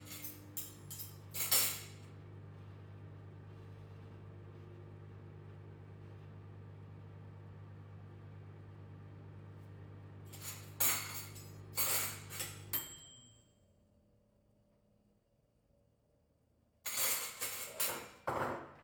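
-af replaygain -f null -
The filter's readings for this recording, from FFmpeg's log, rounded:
track_gain = +23.2 dB
track_peak = 0.119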